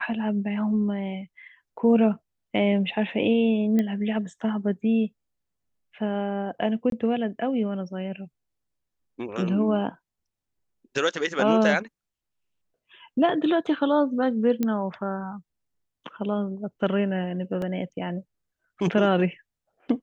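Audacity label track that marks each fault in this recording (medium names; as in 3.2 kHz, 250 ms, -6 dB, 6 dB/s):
3.790000	3.790000	pop -14 dBFS
6.900000	6.920000	dropout 22 ms
14.630000	14.630000	pop -13 dBFS
17.620000	17.620000	dropout 2.1 ms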